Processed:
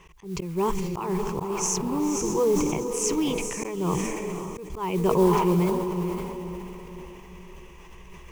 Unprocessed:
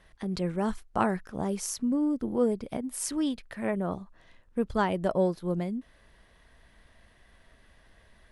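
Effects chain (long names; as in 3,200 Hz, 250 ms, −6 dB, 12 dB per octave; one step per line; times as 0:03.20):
EQ curve with evenly spaced ripples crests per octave 0.74, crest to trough 17 dB
in parallel at +1 dB: downward compressor, threshold −37 dBFS, peak gain reduction 18 dB
on the sum: noise that follows the level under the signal 24 dB
feedback delay with all-pass diffusion 533 ms, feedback 43%, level −7.5 dB
volume swells 246 ms
level that may fall only so fast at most 30 dB per second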